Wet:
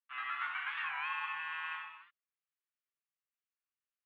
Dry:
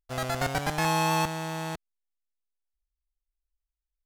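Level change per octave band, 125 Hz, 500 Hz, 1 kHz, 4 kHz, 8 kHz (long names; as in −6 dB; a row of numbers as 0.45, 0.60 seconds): below −40 dB, below −35 dB, −11.5 dB, −12.5 dB, below −40 dB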